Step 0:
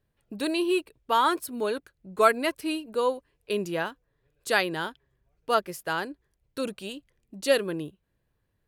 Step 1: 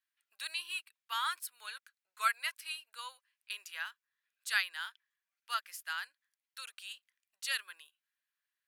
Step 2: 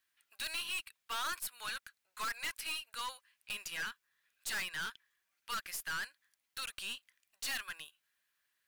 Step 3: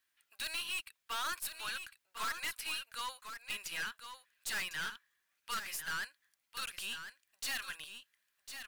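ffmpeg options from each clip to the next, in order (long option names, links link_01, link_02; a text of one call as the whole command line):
ffmpeg -i in.wav -af "highpass=frequency=1400:width=0.5412,highpass=frequency=1400:width=1.3066,volume=-4.5dB" out.wav
ffmpeg -i in.wav -af "aeval=exprs='(tanh(178*val(0)+0.3)-tanh(0.3))/178':channel_layout=same,volume=9.5dB" out.wav
ffmpeg -i in.wav -af "aecho=1:1:1052:0.355" out.wav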